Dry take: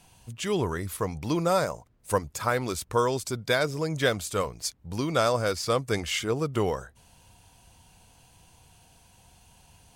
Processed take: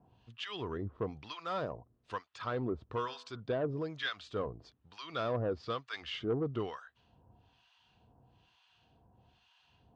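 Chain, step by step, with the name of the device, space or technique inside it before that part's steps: guitar amplifier with harmonic tremolo (harmonic tremolo 1.1 Hz, depth 100%, crossover 1000 Hz; soft clip -23.5 dBFS, distortion -15 dB; speaker cabinet 76–3600 Hz, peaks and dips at 89 Hz -5 dB, 170 Hz -7 dB, 560 Hz -5 dB, 870 Hz -5 dB, 1500 Hz -3 dB, 2200 Hz -9 dB); 2.96–3.4 de-hum 82.44 Hz, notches 22

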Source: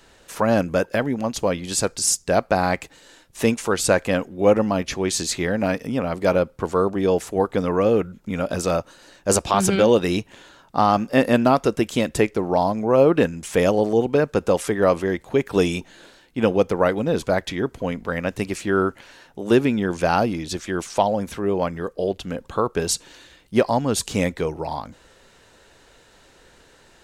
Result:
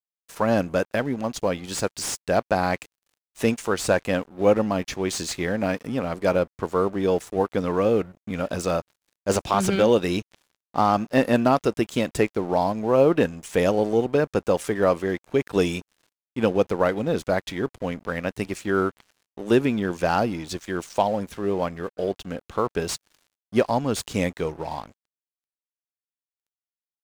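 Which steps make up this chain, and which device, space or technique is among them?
early transistor amplifier (crossover distortion -41 dBFS; slew limiter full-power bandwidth 370 Hz); gain -2 dB

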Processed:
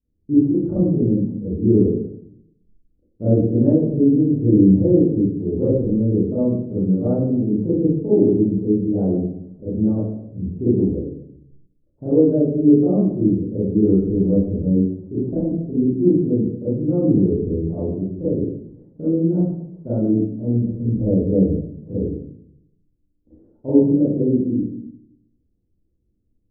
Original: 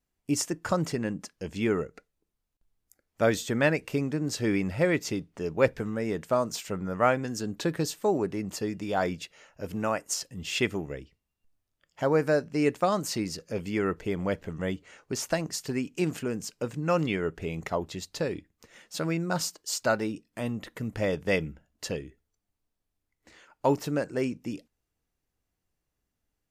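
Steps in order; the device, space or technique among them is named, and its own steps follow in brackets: next room (LPF 380 Hz 24 dB/oct; reverb RT60 0.70 s, pre-delay 27 ms, DRR -12.5 dB); gain +1.5 dB

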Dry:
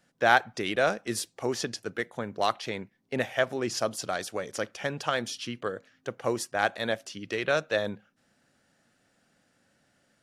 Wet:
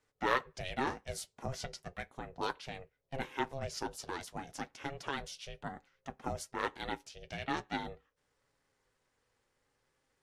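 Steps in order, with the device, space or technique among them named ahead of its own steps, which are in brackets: alien voice (ring modulator 270 Hz; flange 0.37 Hz, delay 6.6 ms, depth 1.9 ms, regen -51%); gain -3 dB

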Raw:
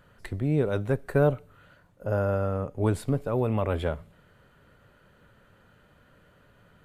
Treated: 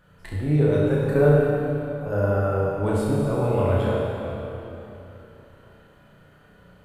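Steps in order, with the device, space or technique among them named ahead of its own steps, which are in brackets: tunnel (flutter echo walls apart 5.7 m, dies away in 0.49 s; reverb RT60 3.4 s, pre-delay 6 ms, DRR -3.5 dB); gain -2.5 dB

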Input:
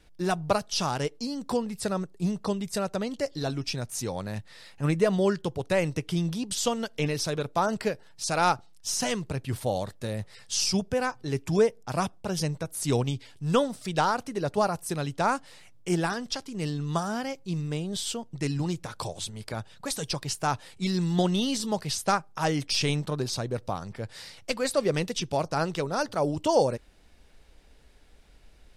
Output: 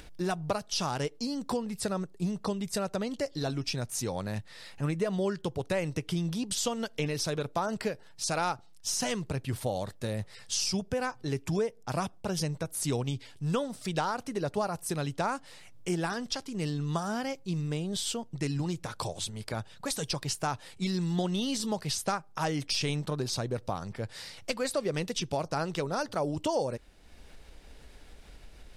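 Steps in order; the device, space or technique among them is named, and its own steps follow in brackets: upward and downward compression (upward compressor, threshold -41 dBFS; compressor 3:1, threshold -28 dBFS, peak gain reduction 9 dB)

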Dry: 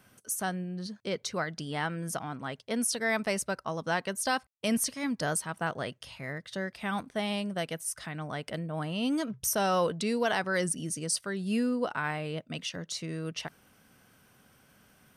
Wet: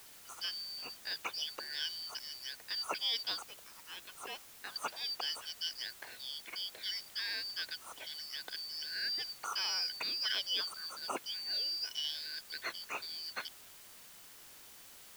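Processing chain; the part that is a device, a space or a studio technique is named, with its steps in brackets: 3.48–4.76 differentiator; split-band scrambled radio (four-band scrambler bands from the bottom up 4321; BPF 380–3000 Hz; white noise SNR 14 dB)

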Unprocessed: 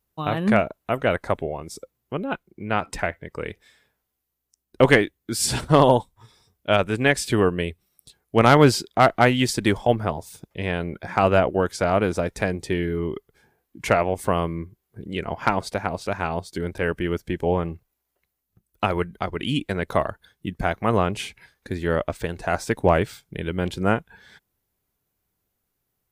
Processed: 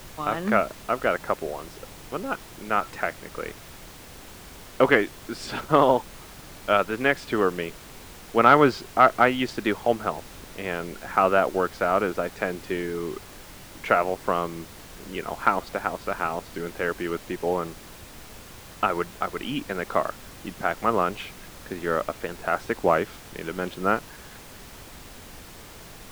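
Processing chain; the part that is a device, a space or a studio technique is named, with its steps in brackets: horn gramophone (BPF 230–3100 Hz; bell 1300 Hz +8 dB 0.29 oct; wow and flutter 25 cents; pink noise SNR 17 dB); gain -2.5 dB

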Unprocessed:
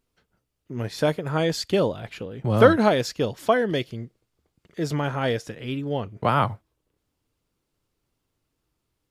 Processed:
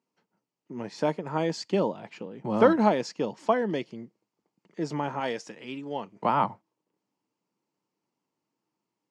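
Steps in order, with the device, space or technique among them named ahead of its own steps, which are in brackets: television speaker (speaker cabinet 160–7400 Hz, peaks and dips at 200 Hz +5 dB, 320 Hz +3 dB, 910 Hz +9 dB, 1500 Hz -4 dB, 3600 Hz -8 dB); 5.2–6.25 tilt +2 dB/oct; gain -5.5 dB

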